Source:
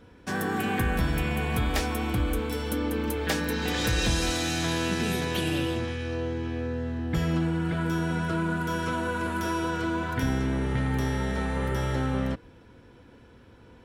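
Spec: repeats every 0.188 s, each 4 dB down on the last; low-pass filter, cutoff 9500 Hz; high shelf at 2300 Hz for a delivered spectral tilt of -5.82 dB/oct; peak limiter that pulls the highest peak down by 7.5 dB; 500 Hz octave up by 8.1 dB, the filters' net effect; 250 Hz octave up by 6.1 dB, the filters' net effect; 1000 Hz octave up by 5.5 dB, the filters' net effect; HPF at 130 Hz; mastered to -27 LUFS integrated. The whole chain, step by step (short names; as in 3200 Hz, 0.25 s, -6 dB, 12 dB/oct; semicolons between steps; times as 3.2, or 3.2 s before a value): HPF 130 Hz; LPF 9500 Hz; bell 250 Hz +6 dB; bell 500 Hz +7 dB; bell 1000 Hz +5 dB; high shelf 2300 Hz -4.5 dB; limiter -17 dBFS; feedback echo 0.188 s, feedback 63%, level -4 dB; gain -3.5 dB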